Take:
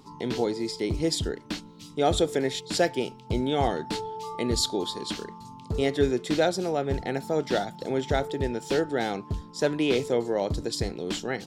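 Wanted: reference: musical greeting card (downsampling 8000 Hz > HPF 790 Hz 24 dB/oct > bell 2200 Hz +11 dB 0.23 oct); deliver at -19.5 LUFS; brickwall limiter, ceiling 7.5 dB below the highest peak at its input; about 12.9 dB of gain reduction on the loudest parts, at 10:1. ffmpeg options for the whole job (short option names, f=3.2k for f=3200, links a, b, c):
-af "acompressor=threshold=-31dB:ratio=10,alimiter=level_in=3dB:limit=-24dB:level=0:latency=1,volume=-3dB,aresample=8000,aresample=44100,highpass=f=790:w=0.5412,highpass=f=790:w=1.3066,equalizer=f=2.2k:t=o:w=0.23:g=11,volume=25dB"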